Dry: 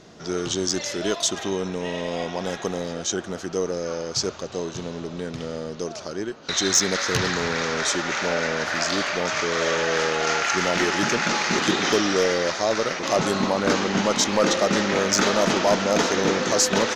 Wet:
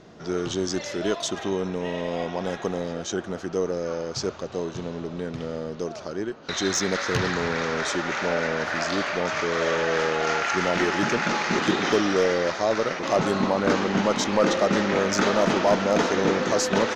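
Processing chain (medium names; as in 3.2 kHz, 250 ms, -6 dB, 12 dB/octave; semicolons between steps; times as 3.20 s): treble shelf 3.9 kHz -11 dB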